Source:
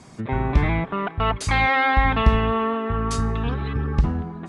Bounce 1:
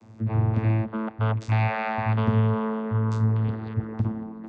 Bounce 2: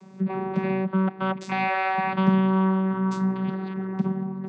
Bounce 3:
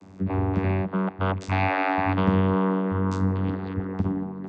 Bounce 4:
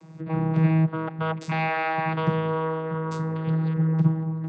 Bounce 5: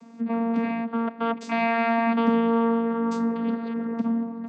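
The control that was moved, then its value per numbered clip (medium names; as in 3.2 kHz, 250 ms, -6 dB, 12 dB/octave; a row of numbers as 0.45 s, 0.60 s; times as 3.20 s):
vocoder, frequency: 110 Hz, 190 Hz, 95 Hz, 160 Hz, 230 Hz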